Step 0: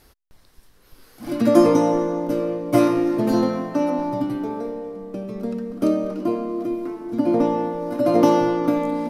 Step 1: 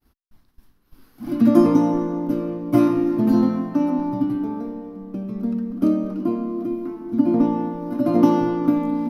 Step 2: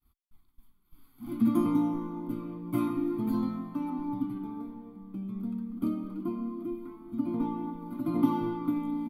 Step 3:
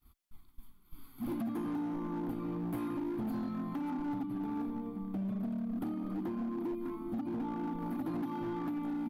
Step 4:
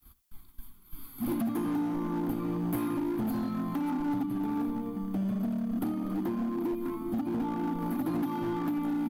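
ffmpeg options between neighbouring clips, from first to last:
ffmpeg -i in.wav -af "agate=range=-33dB:threshold=-47dB:ratio=3:detection=peak,equalizer=frequency=250:width_type=o:width=1:gain=7,equalizer=frequency=500:width_type=o:width=1:gain=-10,equalizer=frequency=2000:width_type=o:width=1:gain=-5,equalizer=frequency=4000:width_type=o:width=1:gain=-4,equalizer=frequency=8000:width_type=o:width=1:gain=-12" out.wav
ffmpeg -i in.wav -af "flanger=delay=1.6:depth=8.4:regen=54:speed=0.28:shape=sinusoidal,aexciter=amount=1.3:drive=1:freq=3000,aecho=1:1:0.9:0.74,volume=-8.5dB" out.wav
ffmpeg -i in.wav -af "acompressor=threshold=-38dB:ratio=8,asoftclip=type=hard:threshold=-39dB,volume=6.5dB" out.wav
ffmpeg -i in.wav -filter_complex "[0:a]acrossover=split=110|1000[link_01][link_02][link_03];[link_01]acrusher=samples=28:mix=1:aa=0.000001[link_04];[link_03]crystalizer=i=1:c=0[link_05];[link_04][link_02][link_05]amix=inputs=3:normalize=0,aecho=1:1:76:0.119,volume=5.5dB" out.wav

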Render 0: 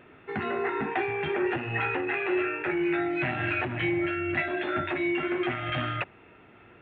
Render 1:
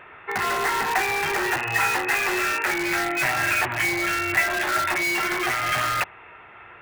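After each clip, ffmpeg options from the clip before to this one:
ffmpeg -i in.wav -filter_complex "[0:a]equalizer=frequency=125:width_type=o:width=1:gain=-3,equalizer=frequency=250:width_type=o:width=1:gain=-11,equalizer=frequency=1000:width_type=o:width=1:gain=9,equalizer=frequency=2000:width_type=o:width=1:gain=7,asplit=2[link_01][link_02];[link_02]aeval=exprs='(mod(12.6*val(0)+1,2)-1)/12.6':channel_layout=same,volume=-5dB[link_03];[link_01][link_03]amix=inputs=2:normalize=0" out.wav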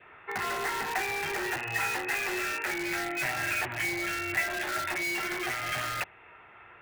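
ffmpeg -i in.wav -af "adynamicequalizer=threshold=0.00891:dfrequency=1100:dqfactor=2:tfrequency=1100:tqfactor=2:attack=5:release=100:ratio=0.375:range=2.5:mode=cutabove:tftype=bell,volume=-7dB" out.wav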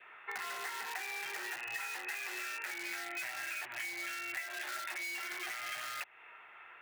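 ffmpeg -i in.wav -af "highpass=frequency=1400:poles=1,acompressor=threshold=-39dB:ratio=6,volume=1dB" out.wav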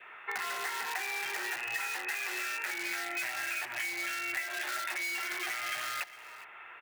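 ffmpeg -i in.wav -af "aecho=1:1:408:0.141,volume=5dB" out.wav

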